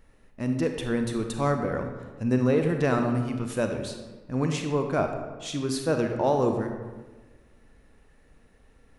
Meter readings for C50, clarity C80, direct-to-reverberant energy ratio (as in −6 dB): 6.0 dB, 7.5 dB, 5.0 dB